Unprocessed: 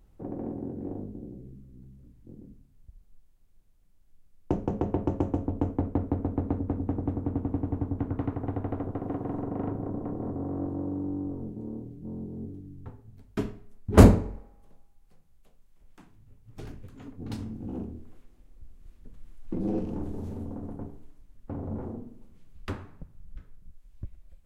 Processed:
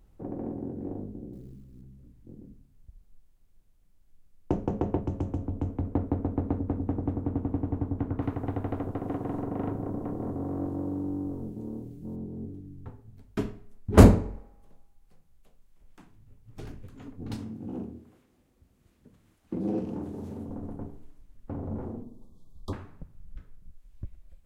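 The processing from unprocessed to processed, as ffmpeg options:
-filter_complex "[0:a]asettb=1/sr,asplit=3[s0][s1][s2];[s0]atrim=end=1.334[s3];[s1]atrim=start=1.33:end=1.82,asetpts=PTS-STARTPTS,afade=t=in:d=0.004:c=qsin,afade=t=out:st=0.486:d=0.004:c=qsin,acrusher=bits=8:mode=log:mix=0:aa=0.000001[s4];[s2]atrim=start=1.816[s5];[s3][s4]acrossfade=d=0.004:c1=hsin:c2=qsin[s6];[s6][s5]acrossfade=d=0.004:c1=qsin:c2=hsin,asettb=1/sr,asplit=3[s7][s8][s9];[s7]atrim=end=4.994[s10];[s8]atrim=start=4.99:end=5.92,asetpts=PTS-STARTPTS,afade=t=in:d=0.004:c=qsin,afade=t=out:st=0.926:d=0.004:c=qsin,acrossover=split=220|3000[s11][s12][s13];[s12]acompressor=threshold=0.00398:ratio=1.5:attack=3.2:release=140:knee=2.83:detection=peak[s14];[s11][s14][s13]amix=inputs=3:normalize=0[s15];[s9]atrim=start=5.916[s16];[s10][s15]acrossfade=d=0.004:c1=hsin:c2=qsin[s17];[s17][s16]acrossfade=d=0.004:c1=qsin:c2=hsin,asettb=1/sr,asplit=3[s18][s19][s20];[s18]atrim=end=8.224[s21];[s19]atrim=start=8.22:end=12.16,asetpts=PTS-STARTPTS,afade=t=in:d=0.004:c=qsin,afade=t=out:st=3.936:d=0.004:c=qsin,highshelf=f=2700:g=10[s22];[s20]atrim=start=12.156[s23];[s21][s22]acrossfade=d=0.004:c1=hsin:c2=qsin[s24];[s24][s23]acrossfade=d=0.004:c1=qsin:c2=hsin,asettb=1/sr,asplit=3[s25][s26][s27];[s25]atrim=end=17.384[s28];[s26]atrim=start=17.38:end=20.5,asetpts=PTS-STARTPTS,afade=t=in:d=0.004:c=qsin,afade=t=out:st=3.116:d=0.004:c=qsin,highpass=110[s29];[s27]atrim=start=20.496[s30];[s28][s29]acrossfade=d=0.004:c1=hsin:c2=qsin[s31];[s31][s30]acrossfade=d=0.004:c1=qsin:c2=hsin,asettb=1/sr,asplit=3[s32][s33][s34];[s32]atrim=end=22.034[s35];[s33]atrim=start=22.03:end=22.73,asetpts=PTS-STARTPTS,afade=t=in:d=0.004:c=qsin,afade=t=out:st=0.696:d=0.004:c=qsin,asuperstop=centerf=2000:order=20:qfactor=0.96[s36];[s34]atrim=start=22.726[s37];[s35][s36]acrossfade=d=0.004:c1=hsin:c2=qsin[s38];[s38][s37]acrossfade=d=0.004:c1=qsin:c2=hsin"

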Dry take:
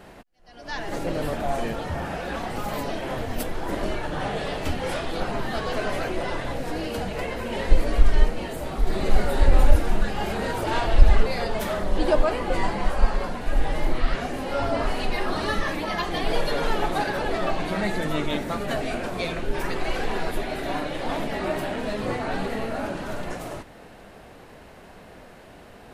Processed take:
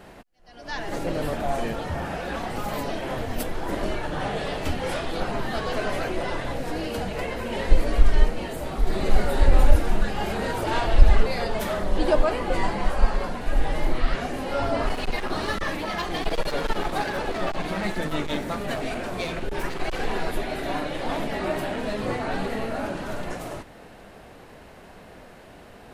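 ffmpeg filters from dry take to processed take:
-filter_complex "[0:a]asettb=1/sr,asplit=3[s0][s1][s2];[s0]atrim=end=14.894[s3];[s1]atrim=start=14.89:end=20.04,asetpts=PTS-STARTPTS,afade=t=in:d=0.004:c=qsin,afade=t=out:st=5.146:d=0.004:c=qsin,aeval=exprs='clip(val(0),-1,0.0422)':c=same[s4];[s2]atrim=start=20.036[s5];[s3][s4]acrossfade=d=0.004:c1=hsin:c2=qsin[s6];[s6][s5]acrossfade=d=0.004:c1=qsin:c2=hsin"

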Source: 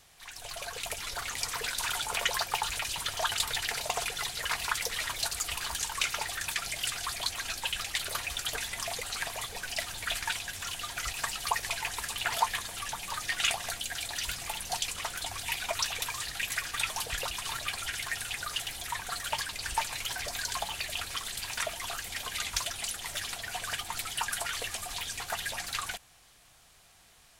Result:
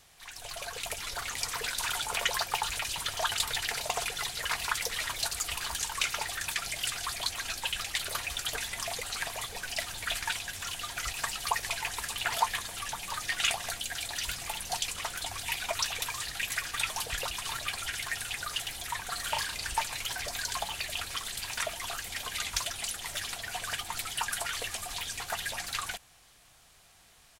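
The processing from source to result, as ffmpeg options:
-filter_complex "[0:a]asplit=3[s0][s1][s2];[s0]afade=t=out:st=19.17:d=0.02[s3];[s1]asplit=2[s4][s5];[s5]adelay=36,volume=0.596[s6];[s4][s6]amix=inputs=2:normalize=0,afade=t=in:st=19.17:d=0.02,afade=t=out:st=19.63:d=0.02[s7];[s2]afade=t=in:st=19.63:d=0.02[s8];[s3][s7][s8]amix=inputs=3:normalize=0"

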